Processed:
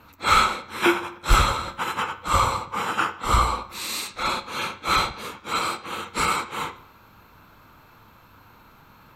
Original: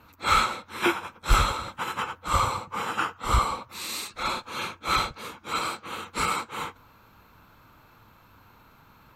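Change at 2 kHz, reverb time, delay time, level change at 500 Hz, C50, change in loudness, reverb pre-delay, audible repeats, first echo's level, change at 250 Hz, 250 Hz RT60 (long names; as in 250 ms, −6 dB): +4.0 dB, 0.65 s, no echo audible, +4.5 dB, 14.5 dB, +4.0 dB, 15 ms, no echo audible, no echo audible, +5.0 dB, 0.65 s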